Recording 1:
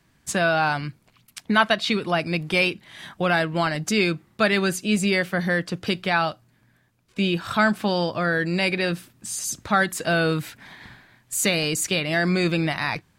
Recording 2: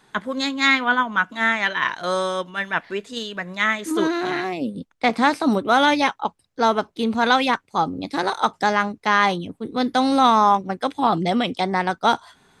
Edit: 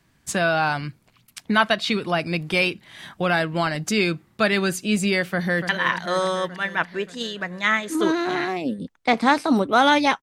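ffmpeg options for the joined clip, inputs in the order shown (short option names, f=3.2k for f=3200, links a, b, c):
-filter_complex "[0:a]apad=whole_dur=10.22,atrim=end=10.22,atrim=end=5.692[a];[1:a]atrim=start=1.648:end=6.18[b];[a][b]acrossfade=d=0.004:c1=hsin:c2=hsin,asplit=2[c][d];[d]afade=t=in:st=5.28:d=0.01,afade=t=out:st=5.69:d=0.01,aecho=0:1:290|580|870|1160|1450|1740|2030|2320|2610|2900|3190:0.375837|0.263086|0.18416|0.128912|0.0902386|0.063167|0.0442169|0.0309518|0.0216663|0.0151664|0.0106165[e];[c][e]amix=inputs=2:normalize=0"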